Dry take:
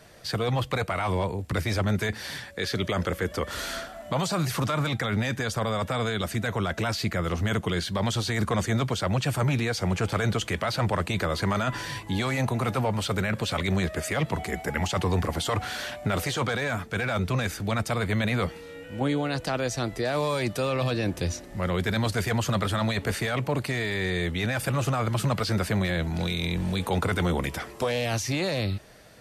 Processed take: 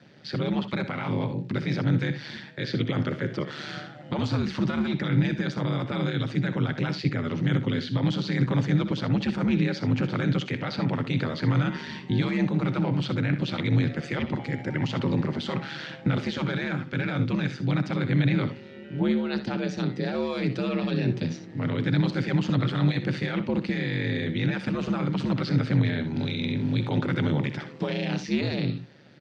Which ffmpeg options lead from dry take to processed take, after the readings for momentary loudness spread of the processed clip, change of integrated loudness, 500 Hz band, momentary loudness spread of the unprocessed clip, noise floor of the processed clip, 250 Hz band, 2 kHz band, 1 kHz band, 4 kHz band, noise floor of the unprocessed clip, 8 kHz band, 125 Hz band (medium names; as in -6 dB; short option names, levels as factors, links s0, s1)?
6 LU, +0.5 dB, -3.0 dB, 4 LU, -43 dBFS, +4.0 dB, -3.0 dB, -6.0 dB, -3.5 dB, -43 dBFS, under -15 dB, +2.0 dB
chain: -filter_complex "[0:a]equalizer=f=230:w=1.2:g=12.5,aeval=exprs='val(0)*sin(2*PI*74*n/s)':c=same,highpass=f=120:w=0.5412,highpass=f=120:w=1.3066,equalizer=f=120:t=q:w=4:g=5,equalizer=f=290:t=q:w=4:g=-6,equalizer=f=440:t=q:w=4:g=-4,equalizer=f=680:t=q:w=4:g=-8,equalizer=f=1100:t=q:w=4:g=-6,lowpass=f=4700:w=0.5412,lowpass=f=4700:w=1.3066,asplit=2[s0][s1];[s1]aecho=0:1:62|78:0.251|0.15[s2];[s0][s2]amix=inputs=2:normalize=0"